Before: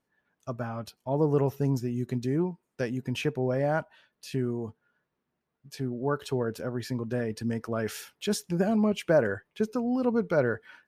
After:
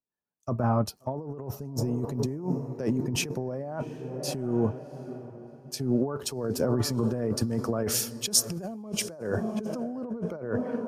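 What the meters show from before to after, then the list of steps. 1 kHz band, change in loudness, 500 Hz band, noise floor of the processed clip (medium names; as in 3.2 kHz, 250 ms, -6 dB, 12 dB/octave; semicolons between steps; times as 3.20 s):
-1.0 dB, -0.5 dB, -3.0 dB, -58 dBFS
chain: high-order bell 2.4 kHz -9 dB; on a send: echo that smears into a reverb 714 ms, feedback 43%, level -15 dB; on the sum: compressor with a negative ratio -34 dBFS, ratio -1; three bands expanded up and down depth 70%; trim +4.5 dB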